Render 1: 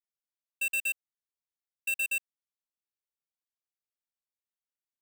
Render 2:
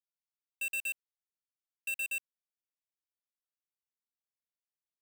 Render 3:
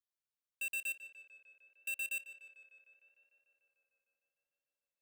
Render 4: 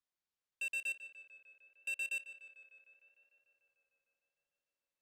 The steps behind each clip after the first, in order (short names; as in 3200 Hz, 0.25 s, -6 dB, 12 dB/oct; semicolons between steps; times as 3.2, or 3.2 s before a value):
sample leveller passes 3; gain -5 dB
tape echo 0.15 s, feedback 89%, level -10 dB, low-pass 3700 Hz; gain -3.5 dB
air absorption 51 m; gain +1.5 dB